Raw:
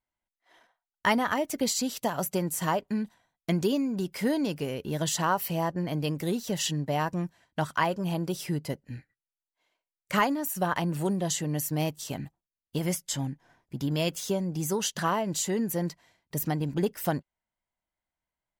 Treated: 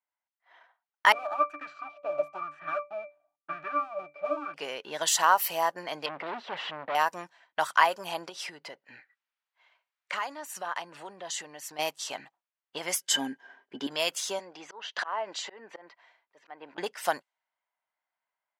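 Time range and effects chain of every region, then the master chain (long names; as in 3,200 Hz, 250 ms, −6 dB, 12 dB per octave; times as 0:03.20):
0:01.12–0:04.54: each half-wave held at its own peak + resonances in every octave D, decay 0.22 s + auto-filter bell 1 Hz 500–1,800 Hz +18 dB
0:06.06–0:06.95: leveller curve on the samples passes 2 + hard clipping −28 dBFS + high-frequency loss of the air 450 metres
0:08.29–0:11.79: downward compressor 5 to 1, threshold −33 dBFS + one half of a high-frequency compander encoder only
0:13.01–0:13.87: linear-phase brick-wall low-pass 13,000 Hz + hollow resonant body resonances 260/390/1,600/3,000 Hz, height 17 dB, ringing for 60 ms
0:14.39–0:16.78: treble cut that deepens with the level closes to 2,000 Hz, closed at −23.5 dBFS + high-pass filter 280 Hz + volume swells 264 ms
whole clip: automatic gain control gain up to 6 dB; Chebyshev high-pass filter 890 Hz, order 2; low-pass that shuts in the quiet parts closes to 2,400 Hz, open at −25 dBFS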